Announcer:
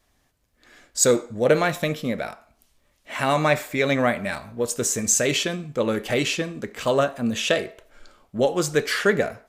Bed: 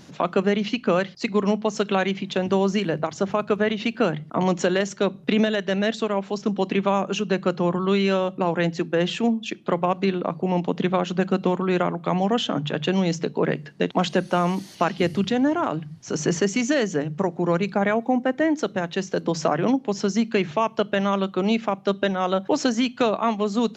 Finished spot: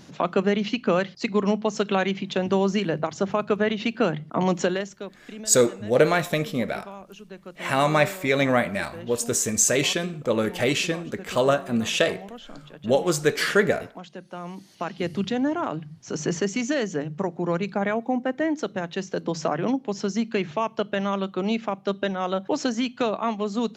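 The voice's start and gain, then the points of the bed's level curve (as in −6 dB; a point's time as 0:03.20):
4.50 s, 0.0 dB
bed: 0:04.64 −1 dB
0:05.19 −19 dB
0:14.11 −19 dB
0:15.21 −3.5 dB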